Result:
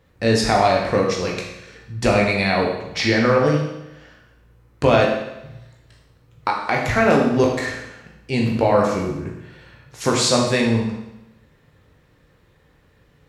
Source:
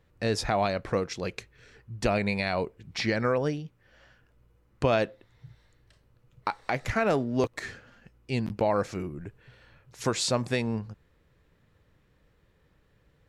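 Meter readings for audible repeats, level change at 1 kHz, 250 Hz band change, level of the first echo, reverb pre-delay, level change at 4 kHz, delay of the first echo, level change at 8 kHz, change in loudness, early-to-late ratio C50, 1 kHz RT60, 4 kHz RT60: none, +10.5 dB, +10.5 dB, none, 15 ms, +10.0 dB, none, +10.0 dB, +10.0 dB, 3.5 dB, 0.90 s, 0.90 s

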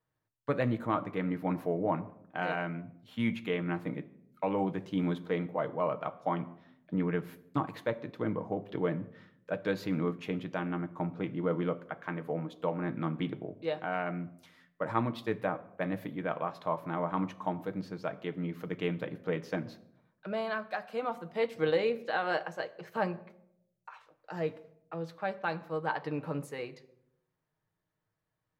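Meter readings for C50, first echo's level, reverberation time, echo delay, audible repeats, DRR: 17.5 dB, none, 0.75 s, none, none, 8.0 dB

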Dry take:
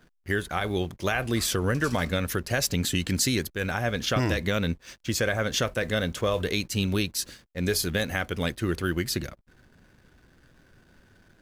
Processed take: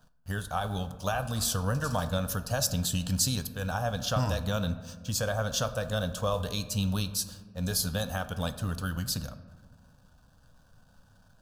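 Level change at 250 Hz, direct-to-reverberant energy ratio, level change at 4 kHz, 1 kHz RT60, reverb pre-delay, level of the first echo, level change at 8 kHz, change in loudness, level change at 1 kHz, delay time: -5.5 dB, 10.5 dB, -3.5 dB, 1.4 s, 6 ms, none, -0.5 dB, -3.5 dB, -1.0 dB, none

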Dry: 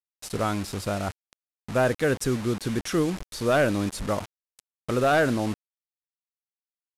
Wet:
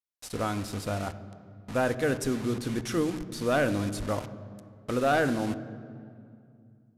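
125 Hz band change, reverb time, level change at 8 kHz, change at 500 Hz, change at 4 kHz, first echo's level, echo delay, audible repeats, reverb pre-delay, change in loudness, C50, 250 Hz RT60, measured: -3.5 dB, 2.4 s, -4.0 dB, -4.0 dB, -4.0 dB, none, none, none, 3 ms, -3.5 dB, 14.0 dB, 3.5 s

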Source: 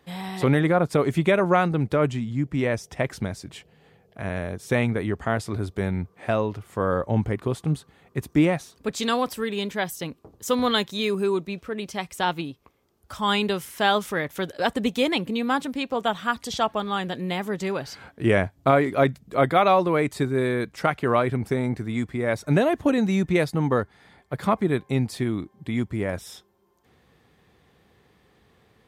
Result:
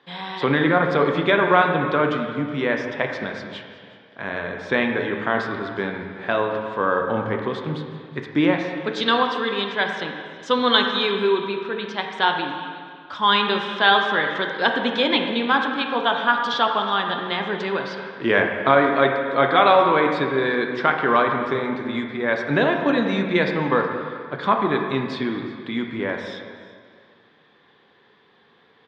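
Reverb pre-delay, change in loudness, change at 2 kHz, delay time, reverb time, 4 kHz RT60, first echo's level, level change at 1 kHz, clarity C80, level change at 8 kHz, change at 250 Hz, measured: 7 ms, +3.5 dB, +8.0 dB, 0.369 s, 2.0 s, 1.8 s, -20.5 dB, +5.5 dB, 5.0 dB, under -10 dB, +0.5 dB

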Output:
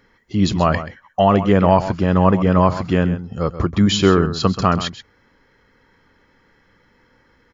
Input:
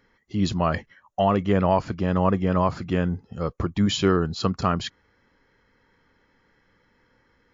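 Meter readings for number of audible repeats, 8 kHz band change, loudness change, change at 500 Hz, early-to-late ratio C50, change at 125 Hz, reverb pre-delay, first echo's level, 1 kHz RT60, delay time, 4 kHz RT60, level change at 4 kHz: 1, n/a, +6.5 dB, +6.5 dB, none, +7.0 dB, none, -12.5 dB, none, 0.131 s, none, +7.0 dB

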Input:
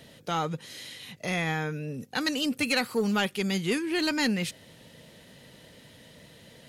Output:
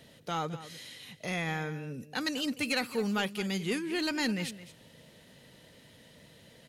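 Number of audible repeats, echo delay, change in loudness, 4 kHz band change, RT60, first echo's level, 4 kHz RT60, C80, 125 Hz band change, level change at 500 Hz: 1, 0.213 s, -4.5 dB, -4.5 dB, none, -15.0 dB, none, none, -4.5 dB, -4.5 dB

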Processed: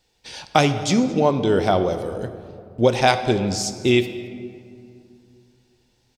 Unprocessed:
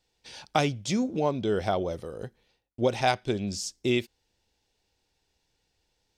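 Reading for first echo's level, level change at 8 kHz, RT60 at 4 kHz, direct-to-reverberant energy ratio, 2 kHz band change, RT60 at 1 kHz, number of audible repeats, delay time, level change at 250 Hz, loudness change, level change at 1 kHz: -23.0 dB, +8.0 dB, 1.2 s, 9.5 dB, +8.5 dB, 2.2 s, 1, 0.22 s, +8.5 dB, +8.0 dB, +8.5 dB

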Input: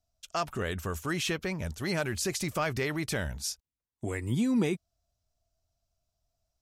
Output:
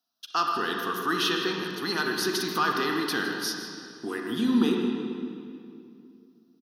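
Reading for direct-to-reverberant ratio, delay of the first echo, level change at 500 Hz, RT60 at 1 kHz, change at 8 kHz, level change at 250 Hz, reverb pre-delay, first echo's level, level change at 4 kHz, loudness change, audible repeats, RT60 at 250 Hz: 0.5 dB, 0.158 s, +3.0 dB, 2.3 s, -1.0 dB, +5.0 dB, 37 ms, -13.0 dB, +8.5 dB, +4.5 dB, 1, 3.2 s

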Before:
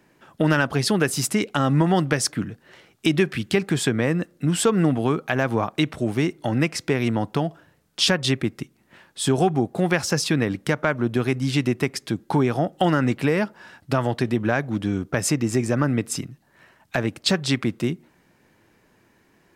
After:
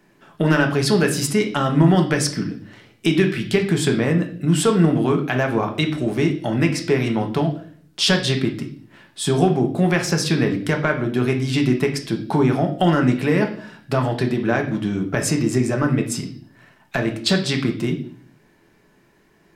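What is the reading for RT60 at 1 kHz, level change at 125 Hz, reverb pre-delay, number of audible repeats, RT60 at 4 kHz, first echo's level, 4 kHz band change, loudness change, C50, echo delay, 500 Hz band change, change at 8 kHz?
0.40 s, +3.5 dB, 3 ms, none, 0.55 s, none, +2.0 dB, +3.0 dB, 10.5 dB, none, +3.0 dB, +0.5 dB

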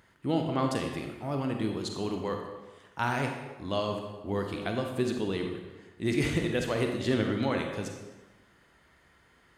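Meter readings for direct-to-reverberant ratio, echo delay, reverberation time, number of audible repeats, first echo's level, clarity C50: 3.0 dB, none, 1.2 s, none, none, 4.5 dB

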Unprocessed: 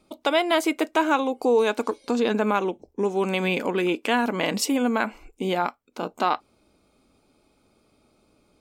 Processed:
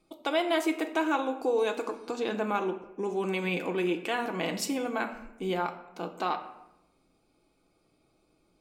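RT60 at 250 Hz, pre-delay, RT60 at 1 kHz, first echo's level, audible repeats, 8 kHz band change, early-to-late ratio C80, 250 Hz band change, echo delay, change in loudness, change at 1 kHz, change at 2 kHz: 1.1 s, 3 ms, 0.85 s, none, none, -7.0 dB, 13.0 dB, -6.5 dB, none, -6.5 dB, -6.5 dB, -6.5 dB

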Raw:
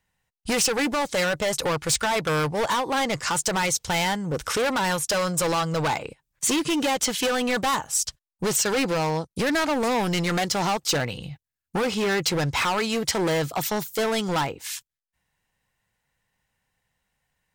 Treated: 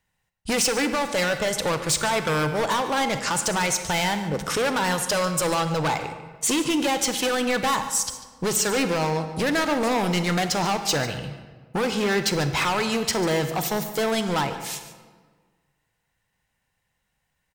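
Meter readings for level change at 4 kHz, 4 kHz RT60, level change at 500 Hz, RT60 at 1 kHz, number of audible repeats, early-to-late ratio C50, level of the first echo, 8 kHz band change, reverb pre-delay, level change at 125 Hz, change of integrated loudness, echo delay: +0.5 dB, 1.0 s, +0.5 dB, 1.5 s, 1, 8.5 dB, -15.0 dB, +0.5 dB, 30 ms, +1.0 dB, +0.5 dB, 0.145 s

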